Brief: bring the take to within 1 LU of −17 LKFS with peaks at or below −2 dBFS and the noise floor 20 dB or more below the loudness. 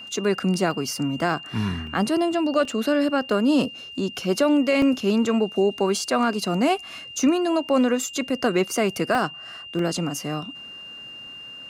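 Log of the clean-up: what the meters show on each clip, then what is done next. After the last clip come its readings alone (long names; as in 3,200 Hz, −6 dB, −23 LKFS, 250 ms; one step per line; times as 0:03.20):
number of dropouts 6; longest dropout 2.6 ms; interfering tone 2,800 Hz; level of the tone −37 dBFS; integrated loudness −23.0 LKFS; sample peak −9.5 dBFS; target loudness −17.0 LKFS
→ repair the gap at 0:00.71/0:01.87/0:02.65/0:04.82/0:09.15/0:09.79, 2.6 ms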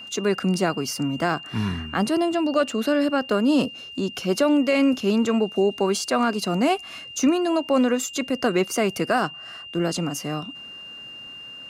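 number of dropouts 0; interfering tone 2,800 Hz; level of the tone −37 dBFS
→ notch filter 2,800 Hz, Q 30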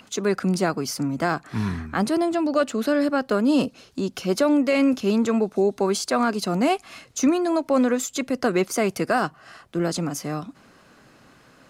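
interfering tone none found; integrated loudness −23.0 LKFS; sample peak −10.0 dBFS; target loudness −17.0 LKFS
→ level +6 dB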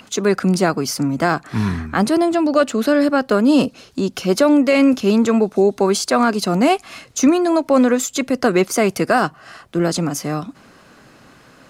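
integrated loudness −17.0 LKFS; sample peak −4.0 dBFS; background noise floor −48 dBFS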